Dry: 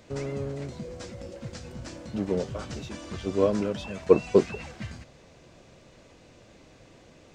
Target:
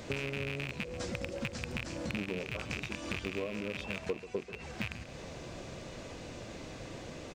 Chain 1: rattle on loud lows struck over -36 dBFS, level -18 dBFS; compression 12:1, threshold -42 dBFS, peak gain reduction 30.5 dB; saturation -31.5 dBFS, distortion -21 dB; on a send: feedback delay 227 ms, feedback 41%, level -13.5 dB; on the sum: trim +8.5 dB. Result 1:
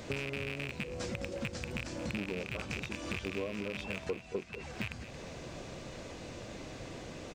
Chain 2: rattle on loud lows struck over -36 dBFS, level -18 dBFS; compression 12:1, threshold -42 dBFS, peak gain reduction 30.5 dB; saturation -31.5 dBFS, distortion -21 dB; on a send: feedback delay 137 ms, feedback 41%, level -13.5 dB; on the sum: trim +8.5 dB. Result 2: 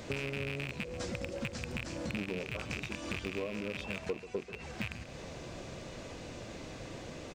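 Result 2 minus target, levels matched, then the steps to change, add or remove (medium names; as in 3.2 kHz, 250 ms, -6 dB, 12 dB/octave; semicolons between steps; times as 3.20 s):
saturation: distortion +12 dB
change: saturation -24 dBFS, distortion -33 dB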